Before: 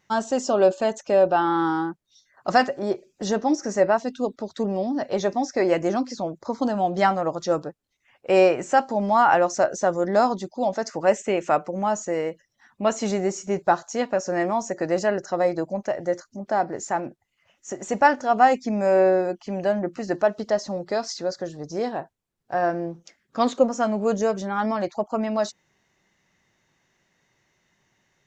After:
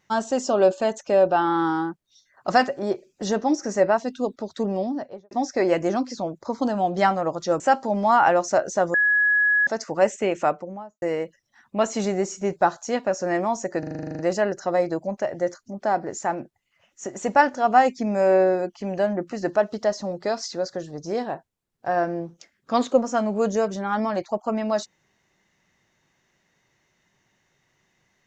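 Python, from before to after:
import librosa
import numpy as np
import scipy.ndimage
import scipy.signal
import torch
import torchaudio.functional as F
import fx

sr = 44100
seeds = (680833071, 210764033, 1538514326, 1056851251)

y = fx.studio_fade_out(x, sr, start_s=4.78, length_s=0.53)
y = fx.studio_fade_out(y, sr, start_s=11.42, length_s=0.66)
y = fx.edit(y, sr, fx.cut(start_s=7.6, length_s=1.06),
    fx.bleep(start_s=10.0, length_s=0.73, hz=1680.0, db=-16.0),
    fx.stutter(start_s=14.85, slice_s=0.04, count=11), tone=tone)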